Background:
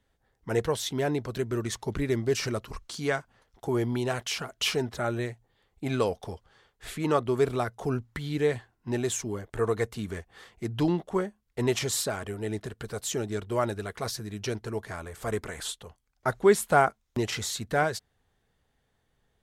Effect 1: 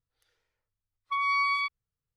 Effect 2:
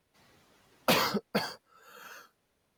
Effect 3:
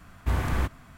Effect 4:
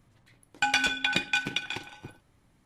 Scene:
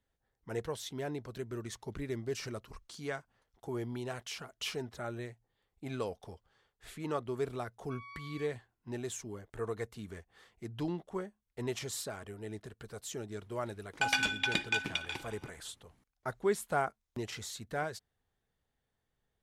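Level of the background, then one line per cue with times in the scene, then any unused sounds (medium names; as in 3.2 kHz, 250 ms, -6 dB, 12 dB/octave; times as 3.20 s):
background -10.5 dB
6.79 s: add 1 -10 dB + compression, threshold -38 dBFS
13.39 s: add 4 -5 dB
not used: 2, 3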